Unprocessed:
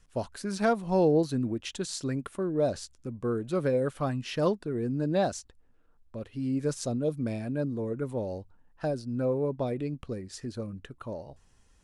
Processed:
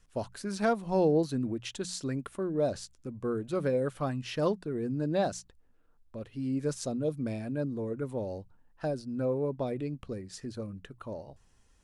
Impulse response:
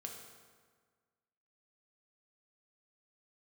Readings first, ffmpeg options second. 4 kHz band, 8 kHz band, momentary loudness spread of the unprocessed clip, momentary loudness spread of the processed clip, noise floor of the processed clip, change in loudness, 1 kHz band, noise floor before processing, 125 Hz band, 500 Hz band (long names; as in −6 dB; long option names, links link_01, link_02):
−2.0 dB, −2.0 dB, 14 LU, 14 LU, −64 dBFS, −2.0 dB, −2.0 dB, −62 dBFS, −2.5 dB, −2.0 dB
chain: -af "bandreject=frequency=60:width_type=h:width=6,bandreject=frequency=120:width_type=h:width=6,bandreject=frequency=180:width_type=h:width=6,volume=-2dB"